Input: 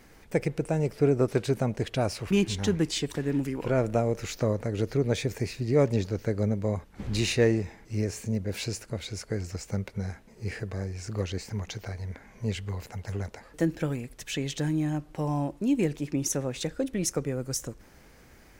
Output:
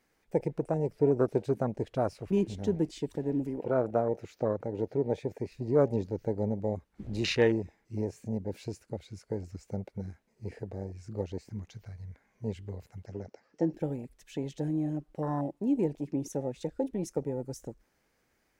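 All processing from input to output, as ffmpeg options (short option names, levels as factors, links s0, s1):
-filter_complex "[0:a]asettb=1/sr,asplit=3[s0][s1][s2];[s0]atrim=end=3.604[s3];[s1]atrim=start=3.6:end=5.52,asetpts=PTS-STARTPTS,afade=t=in:d=0.004:c=qsin,afade=t=out:st=1.916:d=0.004:c=qsin,highpass=53,bass=f=250:g=-3,treble=f=4000:g=-6[s4];[s2]atrim=start=5.516[s5];[s3][s4]acrossfade=d=0.004:c1=hsin:c2=qsin[s6];[s6][s5]acrossfade=d=0.004:c1=qsin:c2=hsin,asettb=1/sr,asplit=3[s7][s8][s9];[s7]atrim=end=13.064[s10];[s8]atrim=start=13.06:end=13.74,asetpts=PTS-STARTPTS,afade=t=in:d=0.004:c=qsin,afade=t=out:st=0.676:d=0.004:c=qsin,acompressor=mode=upward:threshold=0.00447:ratio=2.5:attack=3.2:release=140:knee=2.83:detection=peak,highpass=110,equalizer=f=960:t=q:w=4:g=-3,equalizer=f=3600:t=q:w=4:g=-6,equalizer=f=5500:t=q:w=4:g=8,lowpass=f=6300:w=0.5412,lowpass=f=6300:w=1.3066[s11];[s9]atrim=start=13.736[s12];[s10][s11]acrossfade=d=0.004:c1=hsin:c2=qsin[s13];[s13][s12]acrossfade=d=0.004:c1=qsin:c2=hsin,afwtdn=0.0251,lowshelf=f=170:g=-9.5"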